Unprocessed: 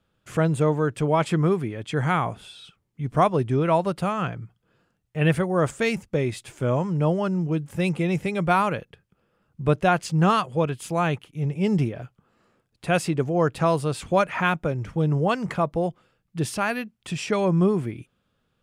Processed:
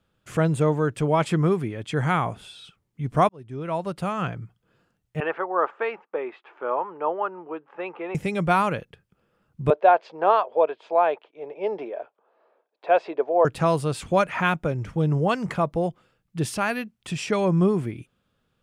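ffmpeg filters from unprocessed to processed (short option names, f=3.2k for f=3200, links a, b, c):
-filter_complex "[0:a]asettb=1/sr,asplit=3[a][b][c];[a]atrim=end=5.204[d];[b]atrim=start=5.2:end=8.15,asetpts=PTS-STARTPTS,afade=t=in:d=0.004:c=qsin,afade=t=out:st=2.946:d=0.004:c=qsin,highpass=f=410:w=0.5412,highpass=f=410:w=1.3066,equalizer=f=580:t=q:w=4:g=-4,equalizer=f=870:t=q:w=4:g=7,equalizer=f=1.2k:t=q:w=4:g=6,equalizer=f=2.1k:t=q:w=4:g=-6,lowpass=f=2.3k:w=0.5412,lowpass=f=2.3k:w=1.3066[e];[c]atrim=start=8.146[f];[d][e]acrossfade=d=0.004:c1=hsin:c2=qsin[g];[g][f]acrossfade=d=0.004:c1=qsin:c2=hsin,asettb=1/sr,asplit=3[h][i][j];[h]atrim=end=9.704[k];[i]atrim=start=9.7:end=13.45,asetpts=PTS-STARTPTS,afade=t=in:d=0.004:c=qsin,afade=t=out:st=3.746:d=0.004:c=qsin,highpass=f=400:w=0.5412,highpass=f=400:w=1.3066,equalizer=f=450:t=q:w=4:g=4,equalizer=f=640:t=q:w=4:g=9,equalizer=f=920:t=q:w=4:g=6,equalizer=f=1.3k:t=q:w=4:g=-4,equalizer=f=2k:t=q:w=4:g=-6,equalizer=f=2.9k:t=q:w=4:g=-8,lowpass=f=3.2k:w=0.5412,lowpass=f=3.2k:w=1.3066[l];[j]atrim=start=13.446[m];[k][l]acrossfade=d=0.004:c1=hsin:c2=qsin[n];[n][m]acrossfade=d=0.004:c1=qsin:c2=hsin,asplit=2[o][p];[o]atrim=end=3.29,asetpts=PTS-STARTPTS,afade=t=out:st=3.286:d=0.004:c=hsin[q];[p]atrim=start=3.29,asetpts=PTS-STARTPTS,afade=t=in:d=1.01[r];[q][r]concat=n=2:v=0:a=1"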